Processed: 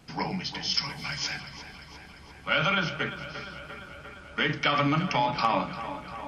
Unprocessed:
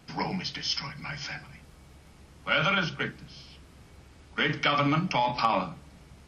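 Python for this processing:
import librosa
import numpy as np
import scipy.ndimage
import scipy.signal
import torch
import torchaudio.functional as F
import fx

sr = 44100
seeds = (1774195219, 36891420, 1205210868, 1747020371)

y = fx.high_shelf(x, sr, hz=3700.0, db=12.0, at=(0.74, 1.4))
y = fx.echo_tape(y, sr, ms=348, feedback_pct=79, wet_db=-11.0, lp_hz=4200.0, drive_db=14.0, wow_cents=10)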